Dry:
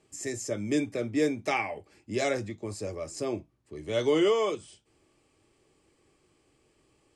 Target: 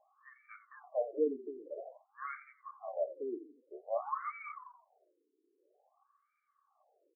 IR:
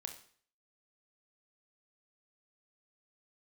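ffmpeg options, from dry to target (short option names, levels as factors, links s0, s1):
-filter_complex "[0:a]asplit=3[s0][s1][s2];[s0]bandpass=f=730:t=q:w=8,volume=1[s3];[s1]bandpass=f=1090:t=q:w=8,volume=0.501[s4];[s2]bandpass=f=2440:t=q:w=8,volume=0.355[s5];[s3][s4][s5]amix=inputs=3:normalize=0,asplit=5[s6][s7][s8][s9][s10];[s7]adelay=86,afreqshift=-33,volume=0.2[s11];[s8]adelay=172,afreqshift=-66,volume=0.0794[s12];[s9]adelay=258,afreqshift=-99,volume=0.032[s13];[s10]adelay=344,afreqshift=-132,volume=0.0127[s14];[s6][s11][s12][s13][s14]amix=inputs=5:normalize=0,afftfilt=real='re*between(b*sr/1024,310*pow(1700/310,0.5+0.5*sin(2*PI*0.51*pts/sr))/1.41,310*pow(1700/310,0.5+0.5*sin(2*PI*0.51*pts/sr))*1.41)':imag='im*between(b*sr/1024,310*pow(1700/310,0.5+0.5*sin(2*PI*0.51*pts/sr))/1.41,310*pow(1700/310,0.5+0.5*sin(2*PI*0.51*pts/sr))*1.41)':win_size=1024:overlap=0.75,volume=4.22"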